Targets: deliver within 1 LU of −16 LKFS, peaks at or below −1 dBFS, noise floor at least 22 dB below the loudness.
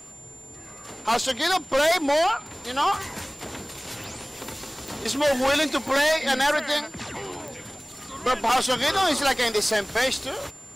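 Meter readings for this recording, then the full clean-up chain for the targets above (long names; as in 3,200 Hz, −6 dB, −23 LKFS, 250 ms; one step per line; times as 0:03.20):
number of clicks 7; interfering tone 7,200 Hz; level of the tone −43 dBFS; integrated loudness −23.0 LKFS; sample peak −13.0 dBFS; target loudness −16.0 LKFS
→ click removal
notch filter 7,200 Hz, Q 30
level +7 dB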